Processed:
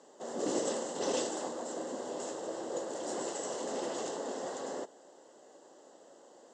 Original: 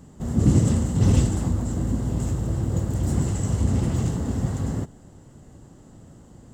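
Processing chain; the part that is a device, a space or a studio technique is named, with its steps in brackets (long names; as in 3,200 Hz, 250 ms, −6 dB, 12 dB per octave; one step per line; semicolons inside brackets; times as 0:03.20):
phone speaker on a table (loudspeaker in its box 410–7,100 Hz, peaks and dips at 560 Hz +4 dB, 1,300 Hz −5 dB, 2,300 Hz −10 dB)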